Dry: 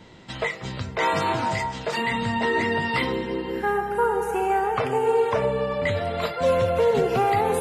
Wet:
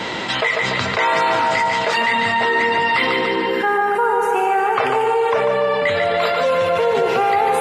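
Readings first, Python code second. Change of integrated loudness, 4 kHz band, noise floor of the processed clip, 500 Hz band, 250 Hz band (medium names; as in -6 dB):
+6.5 dB, +10.0 dB, -22 dBFS, +4.5 dB, +1.5 dB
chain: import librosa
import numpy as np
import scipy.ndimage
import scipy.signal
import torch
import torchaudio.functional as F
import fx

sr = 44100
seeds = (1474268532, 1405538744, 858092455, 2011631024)

p1 = fx.highpass(x, sr, hz=920.0, slope=6)
p2 = fx.high_shelf(p1, sr, hz=5900.0, db=-12.0)
p3 = p2 + fx.echo_feedback(p2, sr, ms=145, feedback_pct=45, wet_db=-7.0, dry=0)
p4 = fx.env_flatten(p3, sr, amount_pct=70)
y = p4 * librosa.db_to_amplitude(6.0)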